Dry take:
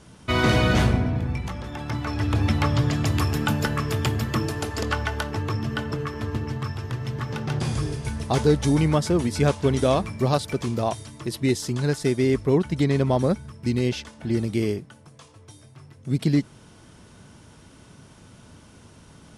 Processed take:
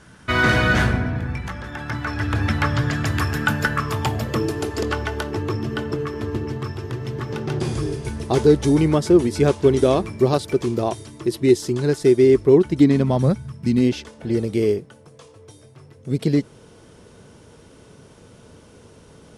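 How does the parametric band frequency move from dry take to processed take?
parametric band +11 dB 0.59 octaves
0:03.73 1,600 Hz
0:04.47 370 Hz
0:12.69 370 Hz
0:13.42 110 Hz
0:14.12 460 Hz

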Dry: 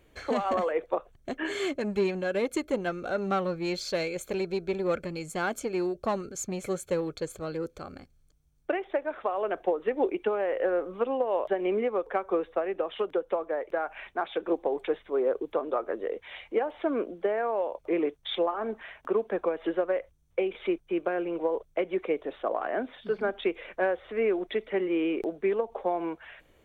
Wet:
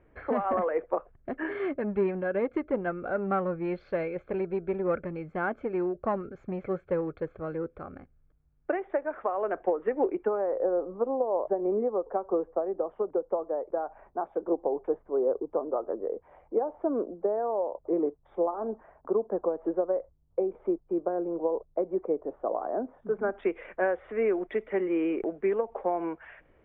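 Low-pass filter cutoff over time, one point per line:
low-pass filter 24 dB per octave
0:10.02 1,900 Hz
0:10.64 1,000 Hz
0:22.93 1,000 Hz
0:23.51 2,200 Hz

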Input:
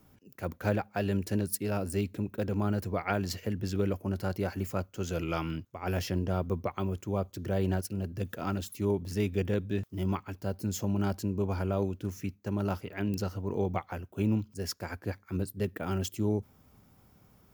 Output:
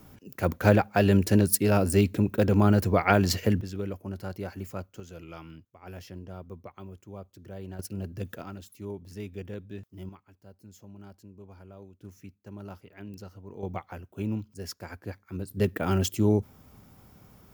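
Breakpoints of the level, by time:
+9 dB
from 0:03.61 −4 dB
from 0:05.00 −11.5 dB
from 0:07.79 −1 dB
from 0:08.42 −9 dB
from 0:10.09 −18 dB
from 0:12.01 −11 dB
from 0:13.63 −3 dB
from 0:15.51 +6.5 dB

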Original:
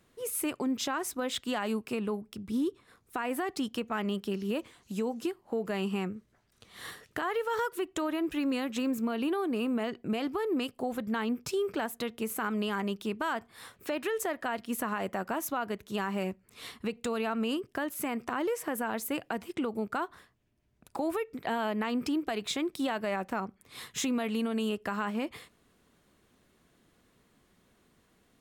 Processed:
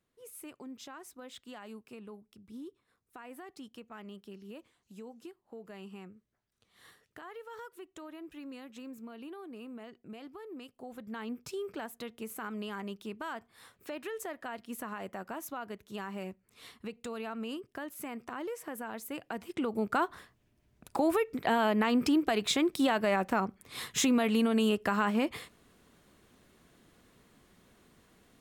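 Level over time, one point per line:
0:10.64 −15 dB
0:11.32 −7.5 dB
0:19.08 −7.5 dB
0:20.00 +4 dB

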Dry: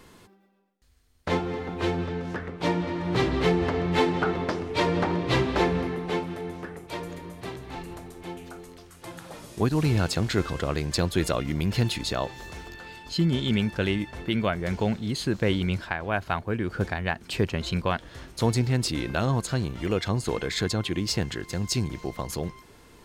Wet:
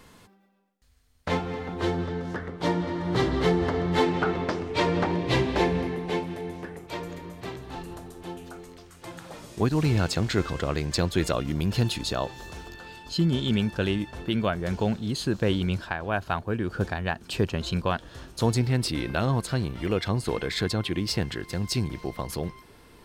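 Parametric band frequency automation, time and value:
parametric band −8 dB 0.27 octaves
360 Hz
from 0:01.72 2,500 Hz
from 0:04.03 11,000 Hz
from 0:05.06 1,300 Hz
from 0:06.79 10,000 Hz
from 0:07.62 2,200 Hz
from 0:08.53 11,000 Hz
from 0:11.33 2,100 Hz
from 0:18.57 6,800 Hz

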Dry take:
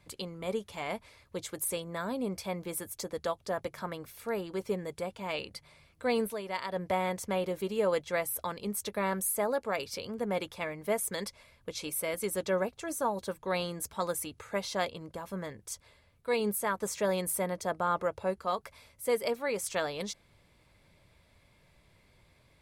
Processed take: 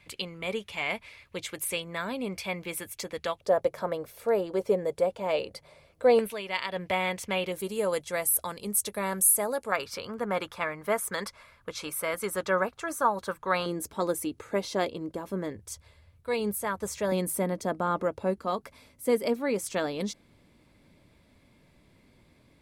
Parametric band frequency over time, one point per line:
parametric band +12 dB 1.1 octaves
2,500 Hz
from 0:03.41 550 Hz
from 0:06.19 2,700 Hz
from 0:07.52 10,000 Hz
from 0:09.72 1,300 Hz
from 0:13.66 320 Hz
from 0:15.56 80 Hz
from 0:17.12 260 Hz

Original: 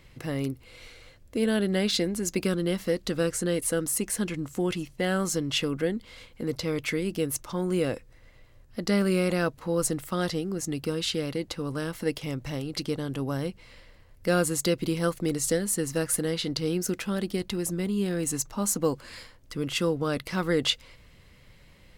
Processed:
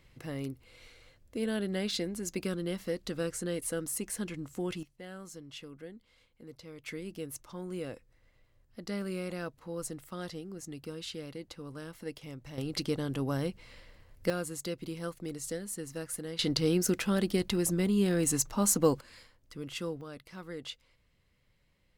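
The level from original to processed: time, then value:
−7.5 dB
from 0:04.83 −19 dB
from 0:06.86 −12 dB
from 0:12.58 −2 dB
from 0:14.30 −11.5 dB
from 0:16.39 +0.5 dB
from 0:19.01 −10.5 dB
from 0:20.01 −17 dB

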